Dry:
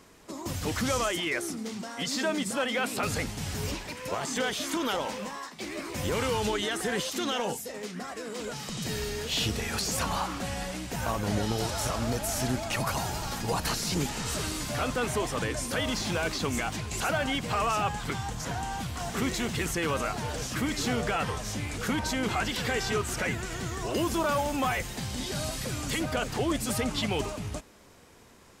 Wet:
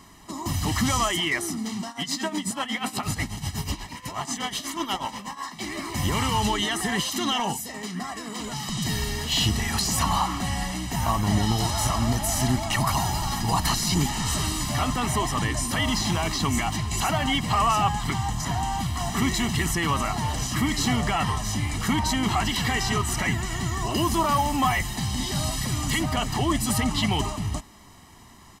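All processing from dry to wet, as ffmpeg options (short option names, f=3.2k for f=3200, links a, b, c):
-filter_complex "[0:a]asettb=1/sr,asplit=3[a][b][c];[a]atrim=end=1.884[d];[b]atrim=start=1.88:end=5.44,asetpts=PTS-STARTPTS,afade=t=in:d=0.004:c=qsin,afade=t=out:st=3.556:d=0.004:c=qsin,bandreject=f=86.08:t=h:w=4,bandreject=f=172.16:t=h:w=4,bandreject=f=258.24:t=h:w=4,bandreject=f=344.32:t=h:w=4,bandreject=f=430.4:t=h:w=4,bandreject=f=516.48:t=h:w=4,bandreject=f=602.56:t=h:w=4,bandreject=f=688.64:t=h:w=4,bandreject=f=774.72:t=h:w=4,bandreject=f=860.8:t=h:w=4,bandreject=f=946.88:t=h:w=4,bandreject=f=1.03296k:t=h:w=4,bandreject=f=1.11904k:t=h:w=4,bandreject=f=1.20512k:t=h:w=4,bandreject=f=1.2912k:t=h:w=4,bandreject=f=1.37728k:t=h:w=4,bandreject=f=1.46336k:t=h:w=4,bandreject=f=1.54944k:t=h:w=4,bandreject=f=1.63552k:t=h:w=4,bandreject=f=1.7216k:t=h:w=4,bandreject=f=1.80768k:t=h:w=4,bandreject=f=1.89376k:t=h:w=4,bandreject=f=1.97984k:t=h:w=4,bandreject=f=2.06592k:t=h:w=4,bandreject=f=2.152k:t=h:w=4,bandreject=f=2.23808k:t=h:w=4,bandreject=f=2.32416k:t=h:w=4,bandreject=f=2.41024k:t=h:w=4,bandreject=f=2.49632k:t=h:w=4,bandreject=f=2.5824k:t=h:w=4,bandreject=f=2.66848k:t=h:w=4,tremolo=f=8.2:d=0.79[e];[c]atrim=start=5.436[f];[d][e]acrossfade=d=0.004:c1=hsin:c2=qsin[g];[g][f]acrossfade=d=0.004:c1=qsin:c2=hsin,bandreject=f=2.1k:w=24,aecho=1:1:1:0.79,volume=3.5dB"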